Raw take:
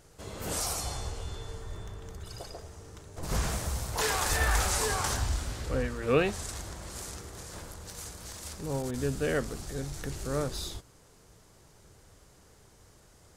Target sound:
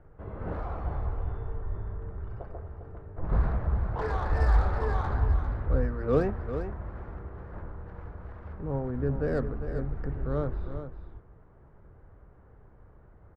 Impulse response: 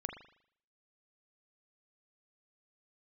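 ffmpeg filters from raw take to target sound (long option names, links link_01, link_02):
-filter_complex "[0:a]lowpass=frequency=1600:width=0.5412,lowpass=frequency=1600:width=1.3066,lowshelf=frequency=85:gain=9.5,acrossover=split=300|1000[link_01][link_02][link_03];[link_03]asoftclip=type=tanh:threshold=-39dB[link_04];[link_01][link_02][link_04]amix=inputs=3:normalize=0,aecho=1:1:400:0.335"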